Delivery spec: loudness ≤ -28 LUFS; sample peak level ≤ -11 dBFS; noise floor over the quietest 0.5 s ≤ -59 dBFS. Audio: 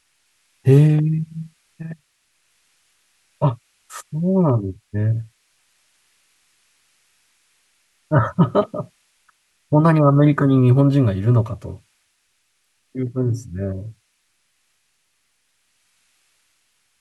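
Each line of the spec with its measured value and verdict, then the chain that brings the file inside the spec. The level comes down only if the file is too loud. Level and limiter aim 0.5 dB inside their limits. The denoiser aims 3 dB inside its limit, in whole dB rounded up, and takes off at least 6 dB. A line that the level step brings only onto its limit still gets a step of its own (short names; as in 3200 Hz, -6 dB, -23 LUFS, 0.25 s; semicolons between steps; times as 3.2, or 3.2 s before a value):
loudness -18.5 LUFS: fail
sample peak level -2.0 dBFS: fail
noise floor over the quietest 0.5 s -67 dBFS: OK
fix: gain -10 dB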